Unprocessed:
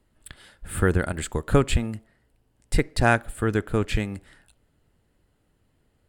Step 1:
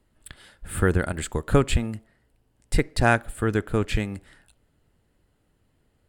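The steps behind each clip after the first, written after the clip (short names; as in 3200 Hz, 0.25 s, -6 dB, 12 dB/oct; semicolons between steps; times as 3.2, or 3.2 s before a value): nothing audible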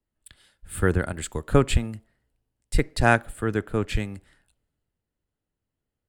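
three-band expander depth 40%; gain -1.5 dB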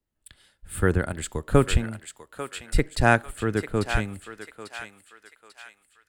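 thinning echo 0.844 s, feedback 46%, high-pass 1000 Hz, level -7 dB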